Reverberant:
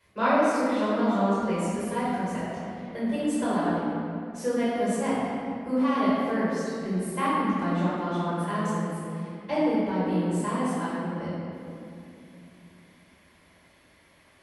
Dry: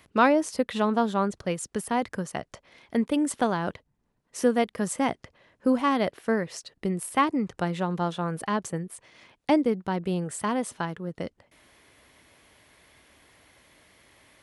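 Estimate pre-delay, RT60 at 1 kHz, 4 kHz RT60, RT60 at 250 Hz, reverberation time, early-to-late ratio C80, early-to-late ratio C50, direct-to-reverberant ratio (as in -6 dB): 4 ms, 2.5 s, 1.6 s, 4.1 s, 2.8 s, -1.5 dB, -4.0 dB, -11.5 dB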